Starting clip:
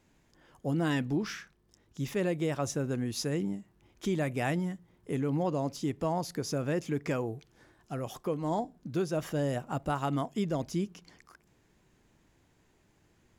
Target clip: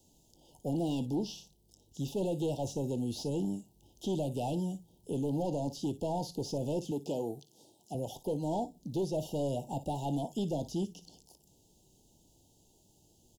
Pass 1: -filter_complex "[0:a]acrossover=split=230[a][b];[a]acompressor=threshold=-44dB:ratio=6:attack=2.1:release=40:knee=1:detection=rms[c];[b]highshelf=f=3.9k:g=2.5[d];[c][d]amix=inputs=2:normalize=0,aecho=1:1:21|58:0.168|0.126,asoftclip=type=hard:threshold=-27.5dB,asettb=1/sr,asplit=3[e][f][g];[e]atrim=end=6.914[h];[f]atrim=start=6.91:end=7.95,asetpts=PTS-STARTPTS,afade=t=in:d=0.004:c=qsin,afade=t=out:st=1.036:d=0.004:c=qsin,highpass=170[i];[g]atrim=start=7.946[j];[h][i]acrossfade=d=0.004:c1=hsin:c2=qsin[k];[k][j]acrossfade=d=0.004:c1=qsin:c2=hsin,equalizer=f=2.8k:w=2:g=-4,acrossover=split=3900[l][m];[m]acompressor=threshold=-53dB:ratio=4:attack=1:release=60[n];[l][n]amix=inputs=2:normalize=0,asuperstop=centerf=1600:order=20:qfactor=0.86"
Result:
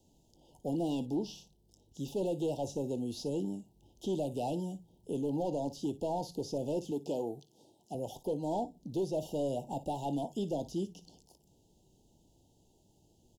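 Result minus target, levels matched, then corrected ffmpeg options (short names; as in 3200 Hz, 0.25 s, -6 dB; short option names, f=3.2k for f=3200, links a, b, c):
compressor: peak gain reduction +7.5 dB; 8000 Hz band -2.5 dB
-filter_complex "[0:a]acrossover=split=230[a][b];[a]acompressor=threshold=-35dB:ratio=6:attack=2.1:release=40:knee=1:detection=rms[c];[b]highshelf=f=3.9k:g=12[d];[c][d]amix=inputs=2:normalize=0,aecho=1:1:21|58:0.168|0.126,asoftclip=type=hard:threshold=-27.5dB,asettb=1/sr,asplit=3[e][f][g];[e]atrim=end=6.914[h];[f]atrim=start=6.91:end=7.95,asetpts=PTS-STARTPTS,afade=t=in:d=0.004:c=qsin,afade=t=out:st=1.036:d=0.004:c=qsin,highpass=170[i];[g]atrim=start=7.946[j];[h][i]acrossfade=d=0.004:c1=hsin:c2=qsin[k];[k][j]acrossfade=d=0.004:c1=qsin:c2=hsin,equalizer=f=2.8k:w=2:g=-4,acrossover=split=3900[l][m];[m]acompressor=threshold=-53dB:ratio=4:attack=1:release=60[n];[l][n]amix=inputs=2:normalize=0,asuperstop=centerf=1600:order=20:qfactor=0.86"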